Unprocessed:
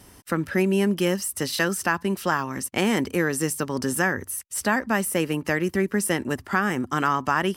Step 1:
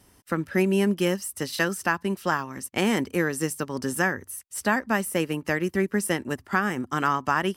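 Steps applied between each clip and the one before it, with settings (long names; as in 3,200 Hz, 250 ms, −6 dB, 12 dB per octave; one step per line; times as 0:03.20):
expander for the loud parts 1.5 to 1, over −35 dBFS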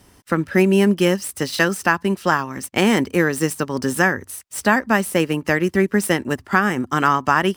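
running median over 3 samples
level +7 dB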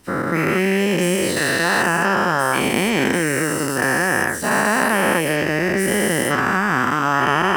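every bin's largest magnitude spread in time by 480 ms
level −7.5 dB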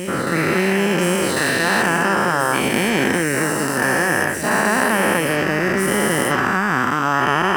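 backwards echo 1,097 ms −9 dB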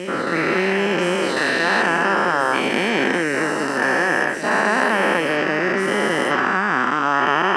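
band-pass filter 240–5,000 Hz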